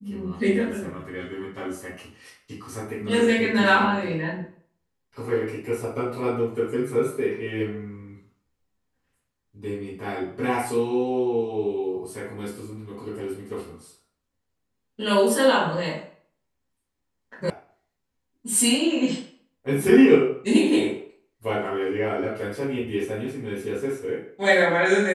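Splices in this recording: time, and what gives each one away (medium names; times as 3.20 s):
17.50 s: sound stops dead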